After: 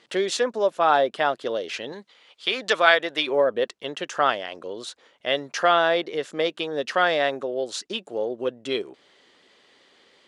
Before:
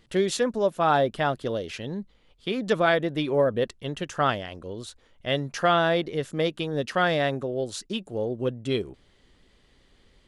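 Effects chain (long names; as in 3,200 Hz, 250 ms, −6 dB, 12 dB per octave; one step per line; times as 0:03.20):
0:01.92–0:03.27: tilt shelving filter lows −7 dB, about 670 Hz
in parallel at −1 dB: downward compressor, threshold −36 dBFS, peak gain reduction 20.5 dB
on the sum: band-pass filter 410–7,300 Hz
level +2 dB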